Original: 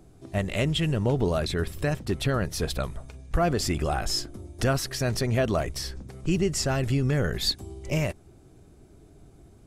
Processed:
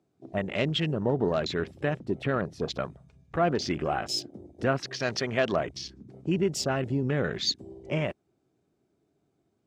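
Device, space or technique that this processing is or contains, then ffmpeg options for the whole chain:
over-cleaned archive recording: -filter_complex "[0:a]asettb=1/sr,asplit=3[a][b][c];[a]atrim=end=5.004[d];[b]atrim=start=5:end=5.53,asetpts=PTS-STARTPTS,afade=t=in:d=0.004:c=qsin,afade=t=out:st=0.526:d=0.004:c=qsin,tiltshelf=f=650:g=-4.5[e];[c]atrim=start=5.526[f];[d][e]acrossfade=d=0.004:c1=hsin:c2=qsin[g];[g][f]acrossfade=d=0.004:c1=qsin:c2=hsin,highpass=170,lowpass=6.4k,afwtdn=0.0126"

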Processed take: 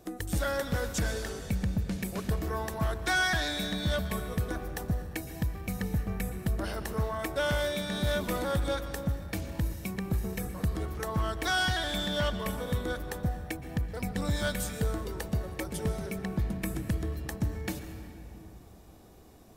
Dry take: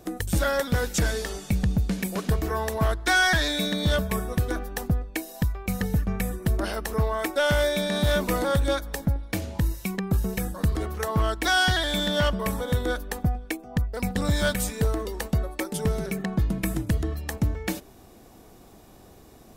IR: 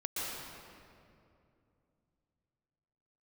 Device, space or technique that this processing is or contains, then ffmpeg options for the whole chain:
saturated reverb return: -filter_complex "[0:a]asplit=2[a][b];[1:a]atrim=start_sample=2205[c];[b][c]afir=irnorm=-1:irlink=0,asoftclip=type=tanh:threshold=-16.5dB,volume=-9dB[d];[a][d]amix=inputs=2:normalize=0,volume=-8dB"

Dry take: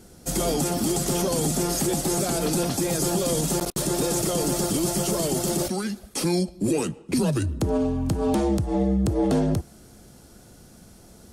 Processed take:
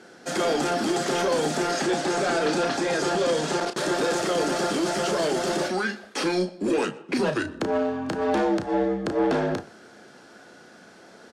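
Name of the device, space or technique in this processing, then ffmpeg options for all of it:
intercom: -filter_complex "[0:a]highpass=350,lowpass=4.1k,equalizer=f=1.6k:t=o:w=0.46:g=9,asoftclip=type=tanh:threshold=-22.5dB,asplit=2[a][b];[b]adelay=33,volume=-8dB[c];[a][c]amix=inputs=2:normalize=0,asettb=1/sr,asplit=3[d][e][f];[d]atrim=end=1.714[g];[e]atrim=start=1.71:end=3.75,asetpts=PTS-STARTPTS,afade=t=in:d=0.004:c=qsin,afade=t=out:st=2.036:d=0.004:c=qsin,lowpass=9.4k[h];[f]atrim=start=3.746[i];[g][h]acrossfade=d=0.004:c1=hsin:c2=qsin[j];[j][i]acrossfade=d=0.004:c1=qsin:c2=hsin,asplit=2[k][l];[l]adelay=122.4,volume=-23dB,highshelf=f=4k:g=-2.76[m];[k][m]amix=inputs=2:normalize=0,volume=5dB"

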